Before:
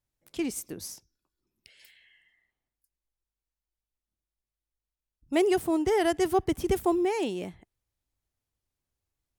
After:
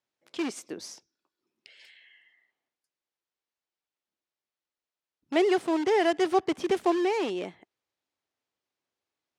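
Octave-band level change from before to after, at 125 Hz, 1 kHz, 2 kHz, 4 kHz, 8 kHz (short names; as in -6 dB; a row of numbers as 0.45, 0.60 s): under -10 dB, +2.0 dB, +3.0 dB, +2.5 dB, -4.5 dB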